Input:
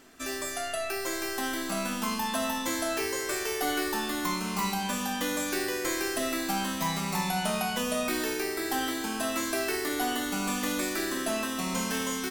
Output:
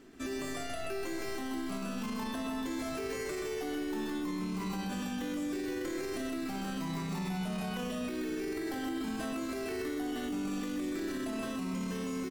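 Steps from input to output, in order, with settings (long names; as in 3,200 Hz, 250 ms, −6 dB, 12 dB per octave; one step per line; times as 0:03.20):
parametric band 14,000 Hz −8 dB 1.6 octaves
mains-hum notches 50/100/150/200/250 Hz
in parallel at −12 dB: sample-and-hold swept by an LFO 26×, swing 60% 0.48 Hz
on the sum: low shelf with overshoot 480 Hz +6 dB, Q 1.5
single-tap delay 129 ms −3 dB
brickwall limiter −23.5 dBFS, peak gain reduction 12 dB
level −5 dB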